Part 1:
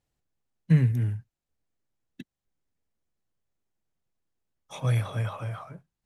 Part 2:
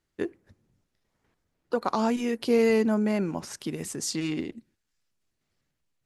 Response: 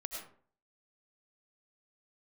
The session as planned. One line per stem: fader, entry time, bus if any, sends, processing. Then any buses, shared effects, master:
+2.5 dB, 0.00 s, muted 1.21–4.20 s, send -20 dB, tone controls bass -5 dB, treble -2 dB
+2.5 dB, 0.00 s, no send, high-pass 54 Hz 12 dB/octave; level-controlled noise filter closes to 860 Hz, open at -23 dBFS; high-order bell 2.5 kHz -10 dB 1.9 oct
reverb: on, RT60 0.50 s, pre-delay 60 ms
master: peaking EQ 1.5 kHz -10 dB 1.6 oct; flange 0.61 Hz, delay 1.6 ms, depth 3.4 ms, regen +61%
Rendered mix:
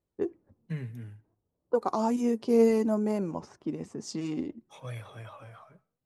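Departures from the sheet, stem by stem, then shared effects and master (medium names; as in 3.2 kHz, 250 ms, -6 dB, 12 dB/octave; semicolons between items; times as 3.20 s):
stem 1 +2.5 dB -> -6.0 dB; master: missing peaking EQ 1.5 kHz -10 dB 1.6 oct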